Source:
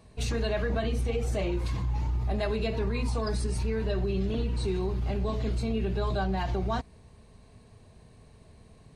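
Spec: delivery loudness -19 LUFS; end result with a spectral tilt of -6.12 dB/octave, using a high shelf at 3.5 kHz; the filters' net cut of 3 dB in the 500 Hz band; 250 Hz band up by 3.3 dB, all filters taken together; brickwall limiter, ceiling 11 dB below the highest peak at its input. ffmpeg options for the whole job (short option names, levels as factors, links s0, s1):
-af "equalizer=f=250:t=o:g=5.5,equalizer=f=500:t=o:g=-6,highshelf=f=3500:g=4.5,volume=7.94,alimiter=limit=0.282:level=0:latency=1"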